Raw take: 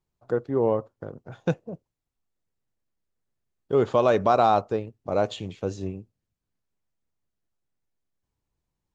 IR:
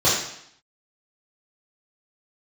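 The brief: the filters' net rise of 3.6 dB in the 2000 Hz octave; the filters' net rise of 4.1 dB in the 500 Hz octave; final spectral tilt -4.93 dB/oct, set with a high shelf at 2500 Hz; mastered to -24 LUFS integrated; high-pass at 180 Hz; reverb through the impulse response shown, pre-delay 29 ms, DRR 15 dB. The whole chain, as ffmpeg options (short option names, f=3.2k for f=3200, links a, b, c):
-filter_complex "[0:a]highpass=180,equalizer=f=500:t=o:g=5,equalizer=f=2k:t=o:g=7.5,highshelf=f=2.5k:g=-5.5,asplit=2[a][b];[1:a]atrim=start_sample=2205,adelay=29[c];[b][c]afir=irnorm=-1:irlink=0,volume=-34dB[d];[a][d]amix=inputs=2:normalize=0,volume=-2.5dB"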